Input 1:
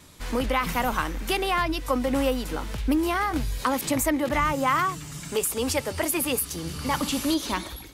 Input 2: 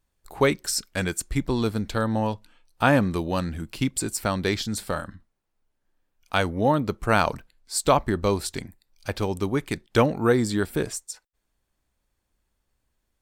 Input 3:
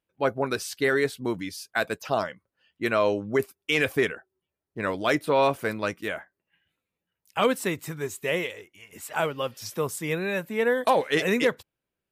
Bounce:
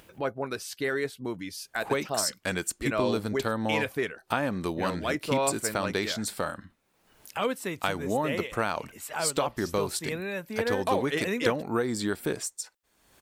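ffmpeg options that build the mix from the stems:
-filter_complex "[1:a]highpass=f=220:p=1,acompressor=threshold=-22dB:ratio=12,adelay=1500,volume=-1dB[a];[2:a]volume=-6dB[b];[a][b]amix=inputs=2:normalize=0,acompressor=mode=upward:threshold=-30dB:ratio=2.5"

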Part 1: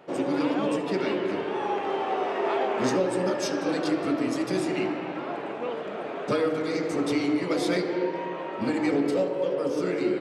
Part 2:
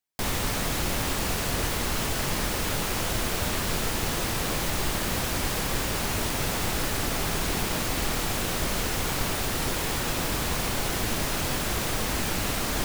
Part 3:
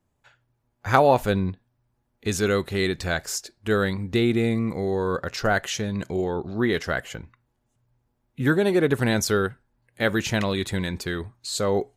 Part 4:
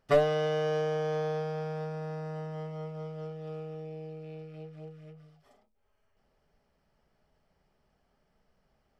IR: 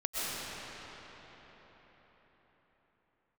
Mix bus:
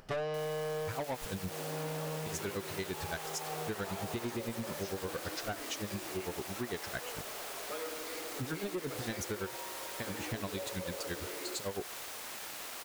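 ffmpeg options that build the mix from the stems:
-filter_complex "[0:a]highpass=510,adelay=1400,volume=-12dB[a];[1:a]highpass=540,acrusher=bits=4:mix=0:aa=0.000001,asoftclip=type=tanh:threshold=-24.5dB,adelay=150,volume=-11.5dB[b];[2:a]aeval=exprs='val(0)*pow(10,-26*(0.5-0.5*cos(2*PI*8.9*n/s))/20)':c=same,volume=-4dB,asplit=2[c][d];[3:a]volume=0.5dB[e];[d]apad=whole_len=396637[f];[e][f]sidechaincompress=threshold=-43dB:ratio=8:attack=16:release=315[g];[a][b][c][g]amix=inputs=4:normalize=0,acompressor=mode=upward:threshold=-45dB:ratio=2.5,asoftclip=type=tanh:threshold=-26dB,acompressor=threshold=-34dB:ratio=6"

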